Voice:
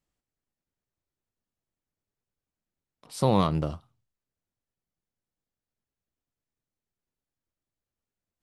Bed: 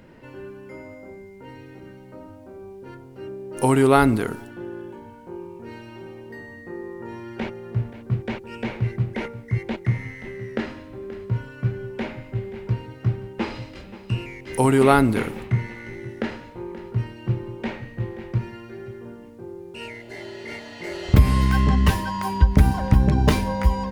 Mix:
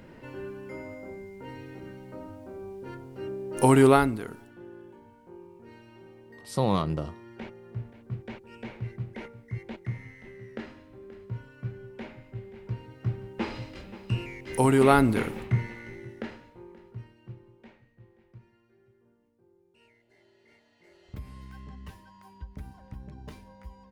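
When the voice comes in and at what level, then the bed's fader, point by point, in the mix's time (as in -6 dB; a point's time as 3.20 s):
3.35 s, -2.5 dB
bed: 3.88 s -0.5 dB
4.13 s -11.5 dB
12.50 s -11.5 dB
13.61 s -3.5 dB
15.59 s -3.5 dB
17.98 s -26.5 dB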